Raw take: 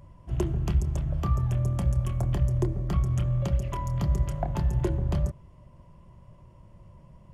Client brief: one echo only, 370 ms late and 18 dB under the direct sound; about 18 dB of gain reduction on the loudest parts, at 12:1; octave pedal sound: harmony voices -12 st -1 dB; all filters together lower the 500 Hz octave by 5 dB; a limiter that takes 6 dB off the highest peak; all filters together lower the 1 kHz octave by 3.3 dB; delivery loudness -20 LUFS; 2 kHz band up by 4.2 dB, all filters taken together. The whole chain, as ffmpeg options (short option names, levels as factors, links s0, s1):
-filter_complex "[0:a]equalizer=f=500:t=o:g=-7,equalizer=f=1000:t=o:g=-3.5,equalizer=f=2000:t=o:g=6.5,acompressor=threshold=0.0126:ratio=12,alimiter=level_in=3.98:limit=0.0631:level=0:latency=1,volume=0.251,aecho=1:1:370:0.126,asplit=2[s0][s1];[s1]asetrate=22050,aresample=44100,atempo=2,volume=0.891[s2];[s0][s2]amix=inputs=2:normalize=0,volume=16.8"